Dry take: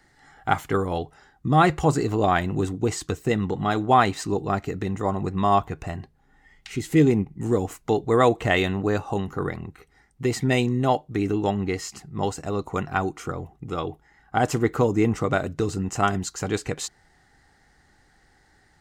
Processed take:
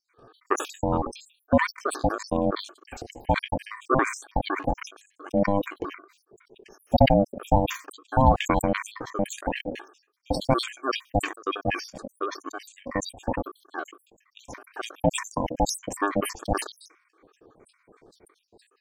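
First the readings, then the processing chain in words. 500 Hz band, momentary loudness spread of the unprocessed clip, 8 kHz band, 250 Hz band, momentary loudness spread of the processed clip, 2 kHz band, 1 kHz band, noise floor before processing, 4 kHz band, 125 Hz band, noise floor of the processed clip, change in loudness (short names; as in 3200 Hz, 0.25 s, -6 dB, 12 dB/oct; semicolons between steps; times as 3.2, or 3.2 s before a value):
-3.0 dB, 14 LU, -1.0 dB, -4.0 dB, 16 LU, -2.5 dB, -3.0 dB, -61 dBFS, -0.5 dB, -5.0 dB, -70 dBFS, -3.0 dB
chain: random spectral dropouts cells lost 78%; in parallel at +1 dB: compressor, threshold -34 dBFS, peak gain reduction 18 dB; on the sum: tilt shelf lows +9.5 dB, about 1400 Hz; ring modulator 400 Hz; sustainer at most 120 dB/s; gain -4.5 dB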